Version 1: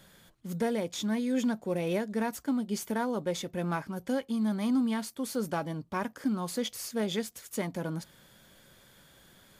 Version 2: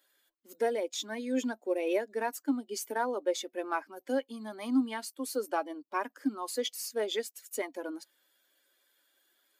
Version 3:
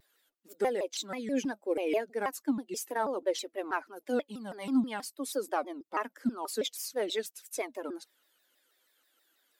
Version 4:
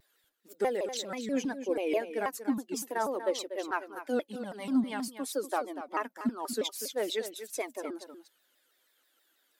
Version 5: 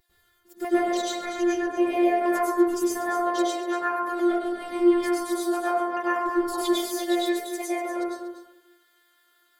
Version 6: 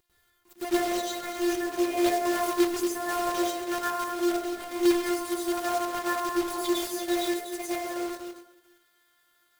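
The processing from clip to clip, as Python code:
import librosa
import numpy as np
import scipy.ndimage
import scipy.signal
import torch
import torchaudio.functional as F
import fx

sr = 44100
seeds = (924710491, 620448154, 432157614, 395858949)

y1 = fx.bin_expand(x, sr, power=1.5)
y1 = scipy.signal.sosfilt(scipy.signal.ellip(4, 1.0, 40, 270.0, 'highpass', fs=sr, output='sos'), y1)
y1 = y1 * librosa.db_to_amplitude(4.0)
y2 = fx.vibrato_shape(y1, sr, shape='saw_down', rate_hz=6.2, depth_cents=250.0)
y3 = y2 + 10.0 ** (-11.0 / 20.0) * np.pad(y2, (int(241 * sr / 1000.0), 0))[:len(y2)]
y4 = fx.robotise(y3, sr, hz=350.0)
y4 = fx.rev_plate(y4, sr, seeds[0], rt60_s=1.0, hf_ratio=0.3, predelay_ms=90, drr_db=-9.0)
y4 = y4 * librosa.db_to_amplitude(1.0)
y5 = fx.block_float(y4, sr, bits=3)
y5 = y5 * librosa.db_to_amplitude(-3.5)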